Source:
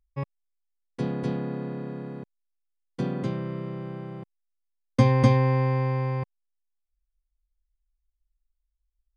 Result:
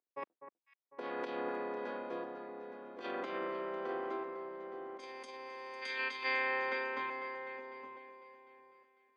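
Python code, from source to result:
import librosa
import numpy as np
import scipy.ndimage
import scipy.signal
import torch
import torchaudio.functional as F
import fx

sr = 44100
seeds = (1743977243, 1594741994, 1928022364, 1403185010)

p1 = fx.octave_divider(x, sr, octaves=2, level_db=-3.0)
p2 = fx.high_shelf(p1, sr, hz=4400.0, db=-7.0)
p3 = fx.echo_feedback(p2, sr, ms=865, feedback_pct=28, wet_db=-8)
p4 = fx.spec_box(p3, sr, start_s=5.82, length_s=1.76, low_hz=1300.0, high_hz=4900.0, gain_db=10)
p5 = fx.level_steps(p4, sr, step_db=24)
p6 = p4 + F.gain(torch.from_numpy(p5), -2.0).numpy()
p7 = fx.env_lowpass(p6, sr, base_hz=690.0, full_db=-13.0)
p8 = fx.over_compress(p7, sr, threshold_db=-29.0, ratio=-1.0)
p9 = scipy.signal.sosfilt(scipy.signal.butter(4, 290.0, 'highpass', fs=sr, output='sos'), p8)
p10 = np.diff(p9, prepend=0.0)
p11 = p10 + fx.echo_alternate(p10, sr, ms=250, hz=1800.0, feedback_pct=64, wet_db=-10, dry=0)
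y = F.gain(torch.from_numpy(p11), 15.5).numpy()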